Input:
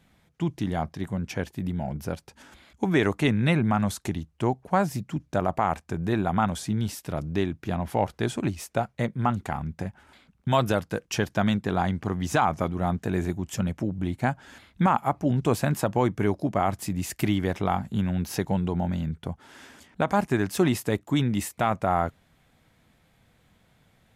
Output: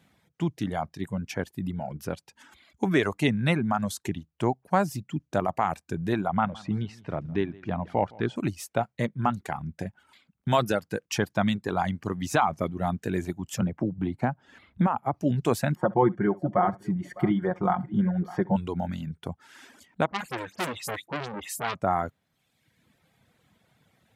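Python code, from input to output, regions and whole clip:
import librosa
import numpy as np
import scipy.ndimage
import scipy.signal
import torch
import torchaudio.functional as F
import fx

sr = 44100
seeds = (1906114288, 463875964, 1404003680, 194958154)

y = fx.chain(x, sr, fx.lowpass(hz=2700.0, slope=12),
    fx.echo_feedback(ms=164, feedback_pct=28, wet_db=-12), at=(6.27, 8.36))
y = fx.chain(y, sr, fx.lowpass(hz=1100.0, slope=6),
    fx.band_squash(depth_pct=70), at=(13.61, 15.14))
y = fx.chain(y, sr, fx.savgol(points=41),
    fx.comb(ms=5.6, depth=0.74),
    fx.echo_multitap(ms=(65, 606), db=(-12.0, -17.5)), at=(15.75, 18.56))
y = fx.chain(y, sr, fx.dispersion(late='highs', ms=91.0, hz=2100.0),
    fx.transformer_sat(knee_hz=2900.0), at=(20.06, 21.75))
y = scipy.signal.sosfilt(scipy.signal.butter(2, 92.0, 'highpass', fs=sr, output='sos'), y)
y = fx.dereverb_blind(y, sr, rt60_s=0.99)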